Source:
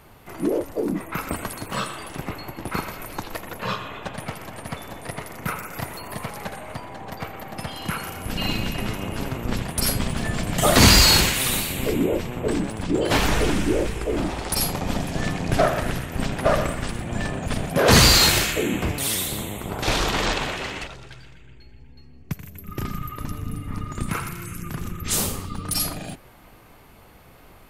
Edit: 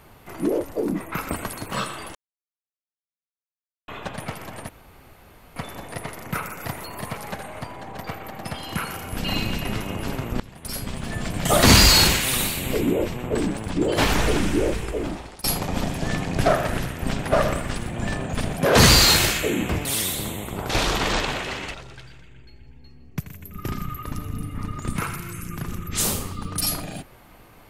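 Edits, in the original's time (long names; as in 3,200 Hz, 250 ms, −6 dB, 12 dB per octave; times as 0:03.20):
0:02.15–0:03.88: silence
0:04.69: splice in room tone 0.87 s
0:09.53–0:10.69: fade in, from −20 dB
0:13.95–0:14.57: fade out, to −22.5 dB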